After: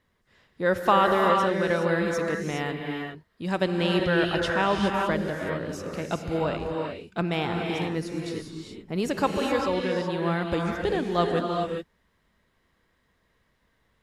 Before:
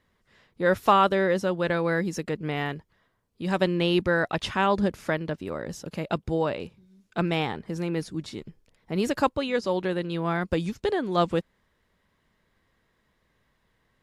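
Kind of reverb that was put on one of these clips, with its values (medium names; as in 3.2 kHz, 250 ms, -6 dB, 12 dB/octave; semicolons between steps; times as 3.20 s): gated-style reverb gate 440 ms rising, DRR 1 dB; trim -1.5 dB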